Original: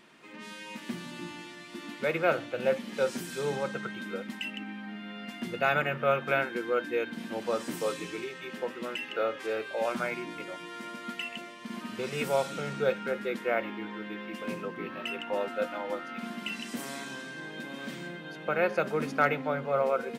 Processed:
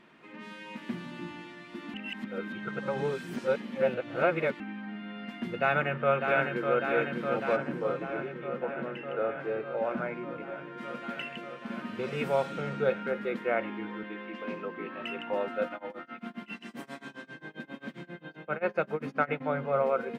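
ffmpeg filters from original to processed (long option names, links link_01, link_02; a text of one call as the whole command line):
ffmpeg -i in.wav -filter_complex "[0:a]asplit=2[link_01][link_02];[link_02]afade=type=in:start_time=5.6:duration=0.01,afade=type=out:start_time=6.76:duration=0.01,aecho=0:1:600|1200|1800|2400|3000|3600|4200|4800|5400|6000|6600|7200:0.530884|0.424708|0.339766|0.271813|0.21745|0.17396|0.139168|0.111335|0.0890676|0.0712541|0.0570033|0.0456026[link_03];[link_01][link_03]amix=inputs=2:normalize=0,asplit=3[link_04][link_05][link_06];[link_04]afade=type=out:start_time=7.55:duration=0.02[link_07];[link_05]lowpass=frequency=1200:poles=1,afade=type=in:start_time=7.55:duration=0.02,afade=type=out:start_time=10.77:duration=0.02[link_08];[link_06]afade=type=in:start_time=10.77:duration=0.02[link_09];[link_07][link_08][link_09]amix=inputs=3:normalize=0,asettb=1/sr,asplit=3[link_10][link_11][link_12];[link_10]atrim=end=14.034[link_13];[link_11]atrim=start=14.03:end=15.01,asetpts=PTS-STARTPTS,afade=type=in:duration=0.004:curve=qsin,afade=type=out:start_time=0.976:duration=0.004:curve=qsin,highpass=240,lowpass=5600[link_14];[link_12]atrim=start=15.006[link_15];[link_13][link_14]acrossfade=duration=0.004:curve1=hsin:curve2=qsin[link_16];[link_16][link_15]acrossfade=duration=0.004:curve1=qsin:curve2=hsin,asplit=3[link_17][link_18][link_19];[link_17]afade=type=out:start_time=15.68:duration=0.02[link_20];[link_18]tremolo=f=7.5:d=0.96,afade=type=in:start_time=15.68:duration=0.02,afade=type=out:start_time=19.4:duration=0.02[link_21];[link_19]afade=type=in:start_time=19.4:duration=0.02[link_22];[link_20][link_21][link_22]amix=inputs=3:normalize=0,asplit=3[link_23][link_24][link_25];[link_23]atrim=end=1.942[link_26];[link_24]atrim=start=1.938:end=4.602,asetpts=PTS-STARTPTS,areverse[link_27];[link_25]atrim=start=4.598[link_28];[link_26][link_27]acrossfade=duration=0.004:curve1=hsin:curve2=hsin[link_29];[link_29][link_28]acrossfade=duration=0.004:curve1=hsin:curve2=hsin,bass=frequency=250:gain=2,treble=frequency=4000:gain=-14" out.wav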